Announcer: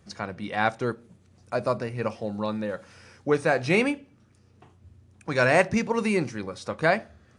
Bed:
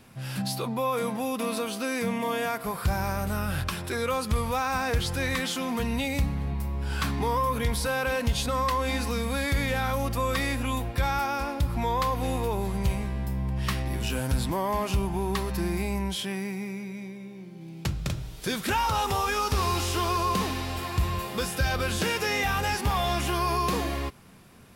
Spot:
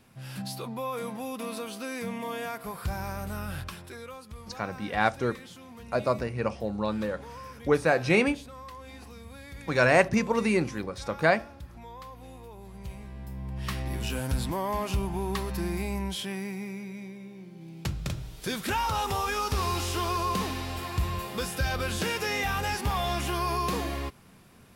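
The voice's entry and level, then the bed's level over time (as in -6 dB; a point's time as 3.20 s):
4.40 s, -0.5 dB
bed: 3.53 s -6 dB
4.28 s -18 dB
12.54 s -18 dB
13.88 s -2.5 dB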